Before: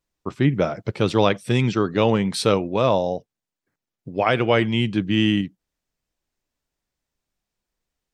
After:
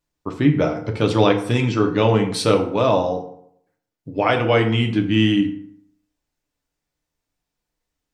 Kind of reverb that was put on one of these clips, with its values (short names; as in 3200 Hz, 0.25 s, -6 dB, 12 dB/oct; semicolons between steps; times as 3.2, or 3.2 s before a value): FDN reverb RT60 0.68 s, low-frequency decay 1×, high-frequency decay 0.6×, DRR 3 dB